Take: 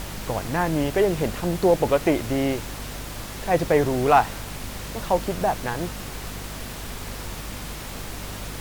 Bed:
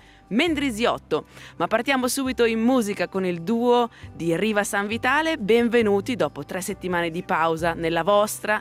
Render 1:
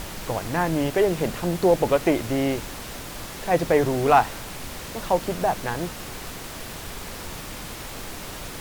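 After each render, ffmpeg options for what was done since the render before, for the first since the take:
-af "bandreject=f=50:t=h:w=4,bandreject=f=100:t=h:w=4,bandreject=f=150:t=h:w=4,bandreject=f=200:t=h:w=4,bandreject=f=250:t=h:w=4"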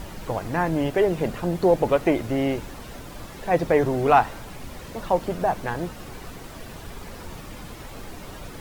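-af "afftdn=nr=9:nf=-37"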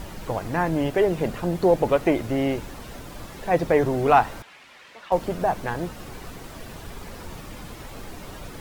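-filter_complex "[0:a]asettb=1/sr,asplit=3[a][b][c];[a]atrim=end=4.424[d];[b]atrim=start=4.42:end=5.12,asetpts=PTS-STARTPTS,afade=t=in:d=0.004:c=qsin,afade=t=out:st=0.696:d=0.004:c=qsin,bandpass=f=2.3k:t=q:w=1.1[e];[c]atrim=start=5.116[f];[d][e]acrossfade=d=0.004:c1=hsin:c2=qsin[g];[g][f]acrossfade=d=0.004:c1=qsin:c2=hsin"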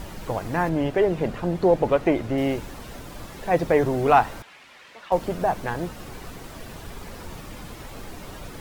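-filter_complex "[0:a]asettb=1/sr,asplit=3[a][b][c];[a]atrim=end=0.694[d];[b]atrim=start=0.69:end=2.38,asetpts=PTS-STARTPTS,afade=t=in:d=0.004:c=qsin,afade=t=out:st=1.686:d=0.004:c=qsin,lowpass=f=4k:p=1[e];[c]atrim=start=2.376[f];[d][e]acrossfade=d=0.004:c1=hsin:c2=qsin[g];[g][f]acrossfade=d=0.004:c1=qsin:c2=hsin"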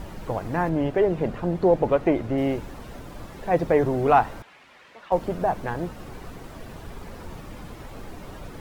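-af "highshelf=f=2.2k:g=-7.5"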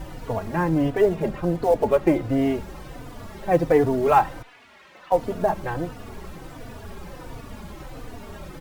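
-filter_complex "[0:a]asplit=2[a][b];[b]acrusher=bits=5:mode=log:mix=0:aa=0.000001,volume=-5dB[c];[a][c]amix=inputs=2:normalize=0,asplit=2[d][e];[e]adelay=3.4,afreqshift=-1.4[f];[d][f]amix=inputs=2:normalize=1"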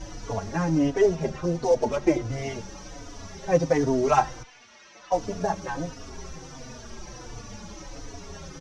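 -filter_complex "[0:a]lowpass=f=5.9k:t=q:w=8.5,asplit=2[a][b];[b]adelay=6.5,afreqshift=-0.4[c];[a][c]amix=inputs=2:normalize=1"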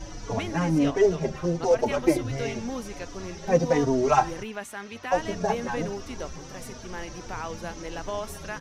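-filter_complex "[1:a]volume=-14dB[a];[0:a][a]amix=inputs=2:normalize=0"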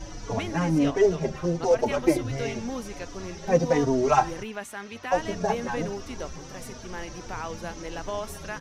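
-af anull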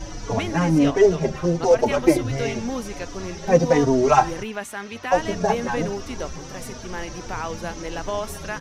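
-af "volume=5dB,alimiter=limit=-3dB:level=0:latency=1"

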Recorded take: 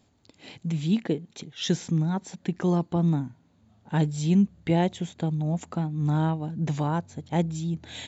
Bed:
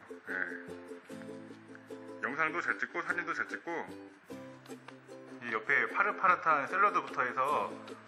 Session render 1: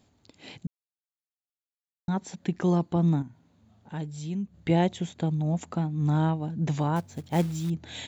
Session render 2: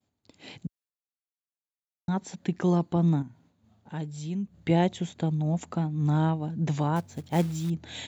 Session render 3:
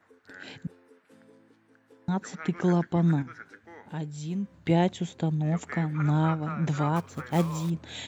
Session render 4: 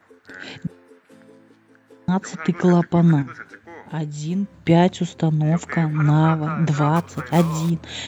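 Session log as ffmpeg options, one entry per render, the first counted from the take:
-filter_complex "[0:a]asettb=1/sr,asplit=3[a][b][c];[a]atrim=end=3.224[d];[b]atrim=start=3.22:end=4.54,asetpts=PTS-STARTPTS,afade=t=in:d=0.004:c=qsin,afade=t=out:st=1.316:d=0.004:c=qsin,acompressor=threshold=-49dB:ratio=1.5:attack=3.2:release=140:knee=1:detection=peak[e];[c]atrim=start=4.536[f];[d][e]acrossfade=d=0.004:c1=hsin:c2=qsin[g];[g][f]acrossfade=d=0.004:c1=qsin:c2=hsin,asettb=1/sr,asplit=3[h][i][j];[h]atrim=end=6.964[k];[i]atrim=start=6.96:end=7.7,asetpts=PTS-STARTPTS,afade=t=in:d=0.004:c=qsin,afade=t=out:st=0.736:d=0.004:c=qsin,acrusher=bits=5:mode=log:mix=0:aa=0.000001[l];[j]atrim=start=7.696[m];[k][l]acrossfade=d=0.004:c1=hsin:c2=qsin[n];[n][m]acrossfade=d=0.004:c1=qsin:c2=hsin,asplit=3[o][p][q];[o]atrim=end=0.67,asetpts=PTS-STARTPTS,afade=t=out:st=0.666:d=0.004:c=hsin[r];[p]atrim=start=0.67:end=2.08,asetpts=PTS-STARTPTS,volume=0[s];[q]atrim=start=2.08,asetpts=PTS-STARTPTS,afade=t=in:d=0.004:c=hsin[t];[r][s][t]concat=n=3:v=0:a=1"
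-af "highpass=60,agate=range=-33dB:threshold=-56dB:ratio=3:detection=peak"
-filter_complex "[1:a]volume=-10.5dB[a];[0:a][a]amix=inputs=2:normalize=0"
-af "volume=8dB"

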